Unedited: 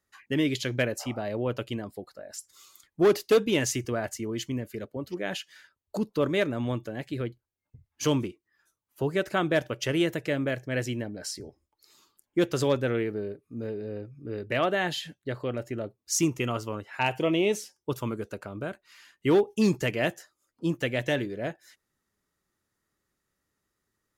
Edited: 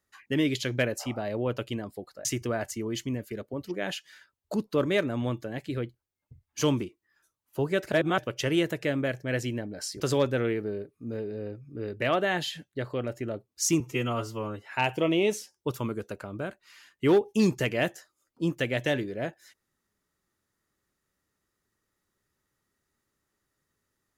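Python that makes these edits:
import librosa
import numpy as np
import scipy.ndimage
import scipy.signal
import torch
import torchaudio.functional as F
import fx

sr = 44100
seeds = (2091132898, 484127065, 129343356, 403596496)

y = fx.edit(x, sr, fx.cut(start_s=2.25, length_s=1.43),
    fx.reverse_span(start_s=9.35, length_s=0.26),
    fx.cut(start_s=11.43, length_s=1.07),
    fx.stretch_span(start_s=16.3, length_s=0.56, factor=1.5), tone=tone)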